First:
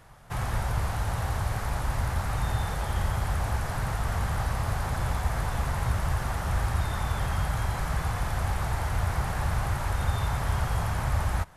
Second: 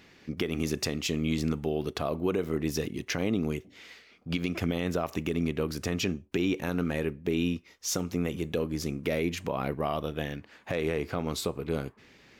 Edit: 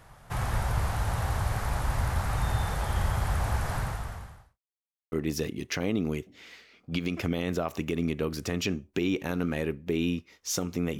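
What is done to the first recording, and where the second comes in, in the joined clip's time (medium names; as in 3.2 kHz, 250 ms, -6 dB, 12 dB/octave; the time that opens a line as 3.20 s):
first
3.76–4.59 s: fade out quadratic
4.59–5.12 s: mute
5.12 s: go over to second from 2.50 s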